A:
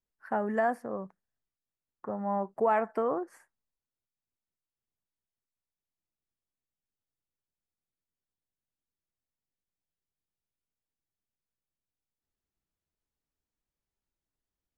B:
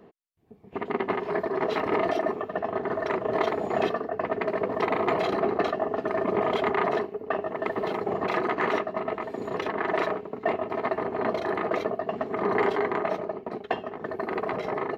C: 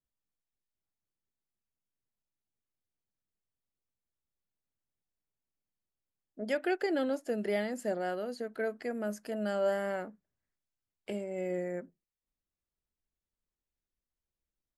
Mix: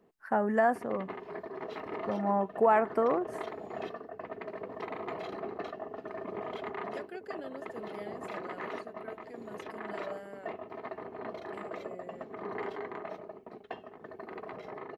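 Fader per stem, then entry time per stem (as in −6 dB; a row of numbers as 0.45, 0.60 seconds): +2.0, −13.5, −13.5 decibels; 0.00, 0.00, 0.45 seconds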